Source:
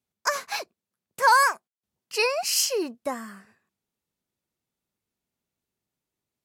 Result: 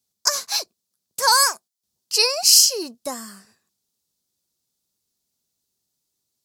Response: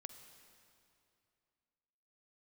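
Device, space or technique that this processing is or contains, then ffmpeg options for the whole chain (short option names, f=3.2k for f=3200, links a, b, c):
over-bright horn tweeter: -af "highshelf=f=3.3k:t=q:w=1.5:g=11.5,alimiter=limit=-1.5dB:level=0:latency=1:release=449"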